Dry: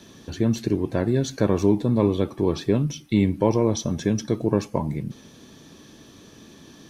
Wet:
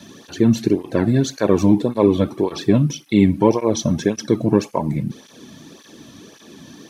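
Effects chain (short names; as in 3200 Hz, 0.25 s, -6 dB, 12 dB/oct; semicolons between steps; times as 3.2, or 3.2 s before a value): tape flanging out of phase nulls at 1.8 Hz, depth 2.7 ms; gain +8 dB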